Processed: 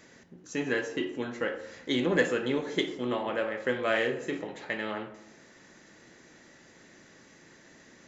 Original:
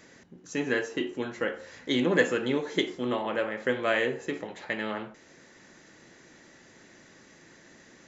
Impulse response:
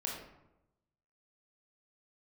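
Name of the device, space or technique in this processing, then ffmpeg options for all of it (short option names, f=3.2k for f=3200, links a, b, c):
saturated reverb return: -filter_complex "[0:a]asettb=1/sr,asplit=3[a][b][c];[a]atrim=end=3.874[d];[b]atrim=start=3.87:end=4.37,asetpts=PTS-STARTPTS,afade=t=in:d=0.004:c=qsin,afade=t=out:st=0.496:d=0.004:c=qsin,asplit=2[e][f];[f]adelay=36,volume=-8dB[g];[e][g]amix=inputs=2:normalize=0,atrim=end_sample=22050[h];[c]atrim=start=4.366[i];[d][h]acrossfade=d=0.004:c1=hsin:c2=qsin[j];[j][i]acrossfade=d=0.004:c1=qsin:c2=hsin,asplit=2[k][l];[1:a]atrim=start_sample=2205[m];[l][m]afir=irnorm=-1:irlink=0,asoftclip=type=tanh:threshold=-21dB,volume=-8dB[n];[k][n]amix=inputs=2:normalize=0,volume=-3.5dB"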